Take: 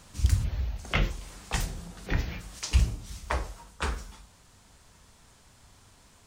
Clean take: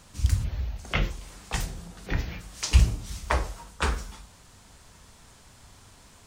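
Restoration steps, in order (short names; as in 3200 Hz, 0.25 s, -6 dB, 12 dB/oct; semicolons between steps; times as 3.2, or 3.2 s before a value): clip repair -13 dBFS; gain 0 dB, from 2.59 s +4.5 dB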